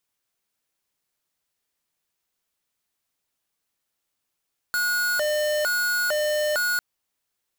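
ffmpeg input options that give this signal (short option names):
-f lavfi -i "aevalsrc='0.0668*(2*lt(mod((1026.5*t+423.5/1.1*(0.5-abs(mod(1.1*t,1)-0.5))),1),0.5)-1)':d=2.05:s=44100"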